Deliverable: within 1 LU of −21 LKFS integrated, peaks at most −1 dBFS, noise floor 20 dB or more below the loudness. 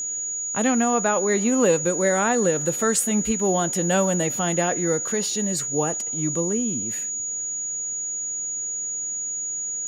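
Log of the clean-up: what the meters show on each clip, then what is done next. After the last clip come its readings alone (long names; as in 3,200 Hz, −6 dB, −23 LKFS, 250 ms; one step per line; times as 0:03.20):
interfering tone 6,800 Hz; level of the tone −26 dBFS; integrated loudness −22.5 LKFS; sample peak −7.5 dBFS; target loudness −21.0 LKFS
→ notch filter 6,800 Hz, Q 30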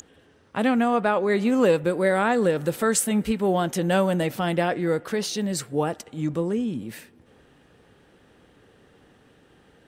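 interfering tone none found; integrated loudness −23.5 LKFS; sample peak −8.5 dBFS; target loudness −21.0 LKFS
→ level +2.5 dB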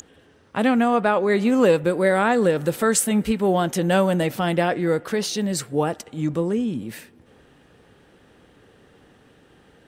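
integrated loudness −21.0 LKFS; sample peak −6.0 dBFS; background noise floor −55 dBFS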